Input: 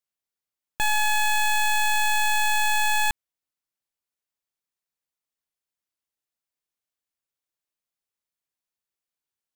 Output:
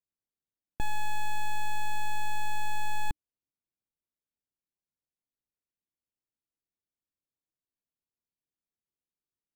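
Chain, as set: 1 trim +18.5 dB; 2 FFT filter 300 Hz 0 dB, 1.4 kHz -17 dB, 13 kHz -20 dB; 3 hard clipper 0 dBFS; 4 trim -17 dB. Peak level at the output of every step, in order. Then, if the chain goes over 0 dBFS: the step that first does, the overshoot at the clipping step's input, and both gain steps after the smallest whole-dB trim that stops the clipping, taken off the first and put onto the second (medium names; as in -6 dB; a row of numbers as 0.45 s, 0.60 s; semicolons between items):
-2.5 dBFS, -3.0 dBFS, -3.0 dBFS, -20.0 dBFS; nothing clips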